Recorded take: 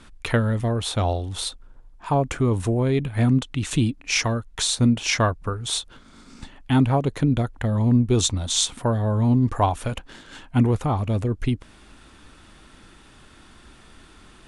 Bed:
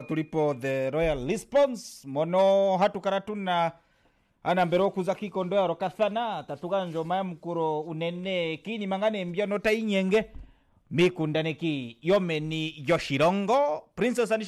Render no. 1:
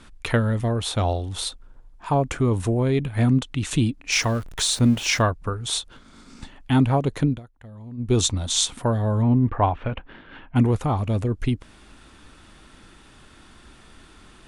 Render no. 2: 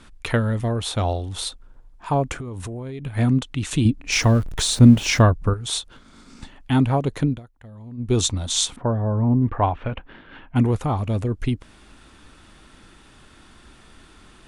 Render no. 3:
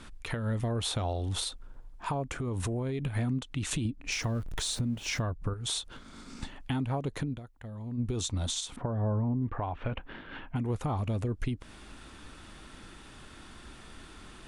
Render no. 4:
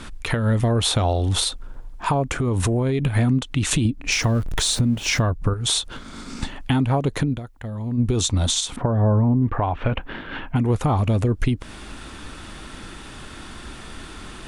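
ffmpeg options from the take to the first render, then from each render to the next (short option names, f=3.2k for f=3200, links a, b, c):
-filter_complex "[0:a]asettb=1/sr,asplit=3[a][b][c];[a]atrim=end=4.124[d];[b]atrim=start=4.12:end=5.22,asetpts=PTS-STARTPTS,afade=t=in:d=0.004:c=qsin,afade=t=out:st=1.096:d=0.004:c=qsin,aeval=exprs='val(0)+0.5*0.0168*sgn(val(0))':c=same[e];[c]atrim=start=5.216[f];[d][e]acrossfade=d=0.004:c1=hsin:c2=qsin[g];[g][f]acrossfade=d=0.004:c1=qsin:c2=hsin,asettb=1/sr,asplit=3[h][i][j];[h]atrim=end=9.224[k];[i]atrim=start=9.22:end=10.56,asetpts=PTS-STARTPTS,afade=t=in:d=0.004:c=qsin,afade=t=out:st=1.336:d=0.004:c=qsin,lowpass=f=2.8k:w=0.5412,lowpass=f=2.8k:w=1.3066[l];[j]atrim=start=10.556[m];[k][l]acrossfade=d=0.004:c1=hsin:c2=qsin[n];[n][m]acrossfade=d=0.004:c1=qsin:c2=hsin,asplit=3[o][p][q];[o]atrim=end=7.4,asetpts=PTS-STARTPTS,afade=t=out:st=7.26:d=0.14:silence=0.105925[r];[p]atrim=start=7.4:end=7.97,asetpts=PTS-STARTPTS,volume=-19.5dB[s];[q]atrim=start=7.97,asetpts=PTS-STARTPTS,afade=t=in:d=0.14:silence=0.105925[t];[r][s][t]concat=n=3:v=0:a=1"
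-filter_complex "[0:a]asettb=1/sr,asplit=3[a][b][c];[a]atrim=end=2.334[d];[b]atrim=start=2.33:end=3.06,asetpts=PTS-STARTPTS,afade=t=in:d=0.004:c=qsin,afade=t=out:st=0.726:d=0.004:c=qsin,acompressor=threshold=-28dB:ratio=16:attack=3.2:release=140:knee=1:detection=peak[e];[c]atrim=start=3.056[f];[d][e]acrossfade=d=0.004:c1=hsin:c2=qsin[g];[g][f]acrossfade=d=0.004:c1=qsin:c2=hsin,asettb=1/sr,asplit=3[h][i][j];[h]atrim=end=3.854[k];[i]atrim=start=3.85:end=5.54,asetpts=PTS-STARTPTS,afade=t=in:d=0.004:c=qsin,afade=t=out:st=1.686:d=0.004:c=qsin,lowshelf=f=450:g=9[l];[j]atrim=start=5.536[m];[k][l]acrossfade=d=0.004:c1=hsin:c2=qsin[n];[n][m]acrossfade=d=0.004:c1=qsin:c2=hsin,asettb=1/sr,asplit=3[o][p][q];[o]atrim=end=8.764[r];[p]atrim=start=8.76:end=9.42,asetpts=PTS-STARTPTS,afade=t=in:d=0.004:c=qsin,afade=t=out:st=0.656:d=0.004:c=qsin,lowpass=1.3k[s];[q]atrim=start=9.416[t];[r][s]acrossfade=d=0.004:c1=hsin:c2=qsin[u];[u][t]acrossfade=d=0.004:c1=qsin:c2=hsin"
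-af "acompressor=threshold=-26dB:ratio=12,alimiter=limit=-22.5dB:level=0:latency=1:release=134"
-af "volume=11.5dB"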